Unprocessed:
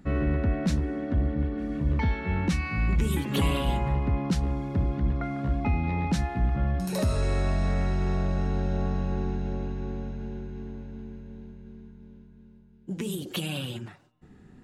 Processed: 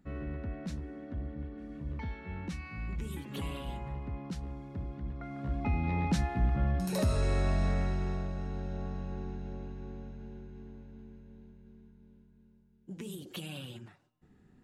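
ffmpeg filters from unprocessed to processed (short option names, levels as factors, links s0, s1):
-af "volume=0.708,afade=t=in:st=5.16:d=0.8:silence=0.316228,afade=t=out:st=7.63:d=0.69:silence=0.446684"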